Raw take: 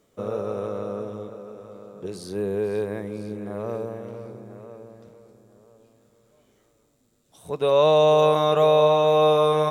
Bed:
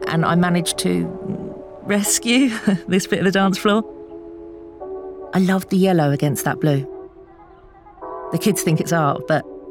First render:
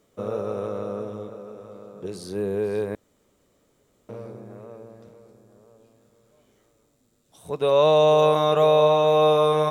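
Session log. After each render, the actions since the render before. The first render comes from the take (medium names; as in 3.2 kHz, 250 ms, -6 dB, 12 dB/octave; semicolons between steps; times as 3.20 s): 2.95–4.09 s: room tone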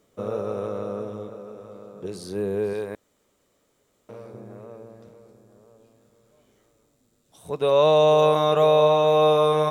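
2.73–4.34 s: bass shelf 430 Hz -7 dB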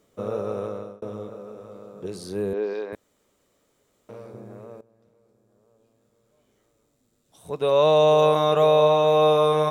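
0.50–1.02 s: fade out equal-power; 2.53–2.93 s: elliptic band-pass 250–5400 Hz; 4.81–8.02 s: fade in, from -18 dB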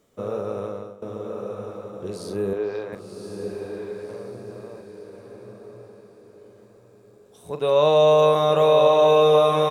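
doubling 41 ms -10.5 dB; echo that smears into a reverb 1078 ms, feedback 41%, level -4 dB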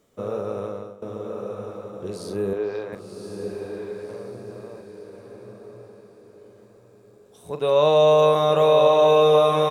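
no audible change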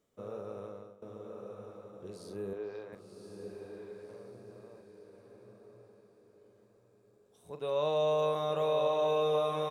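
trim -13.5 dB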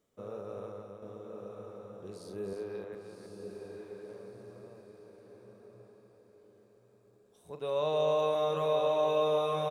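delay 310 ms -6 dB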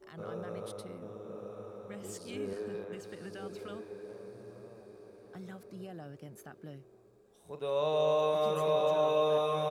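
add bed -30 dB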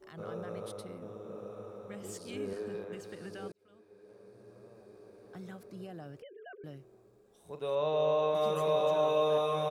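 3.52–5.34 s: fade in; 6.22–6.64 s: formants replaced by sine waves; 7.75–8.35 s: distance through air 120 m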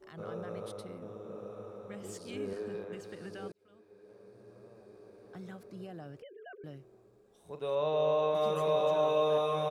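treble shelf 8.8 kHz -5.5 dB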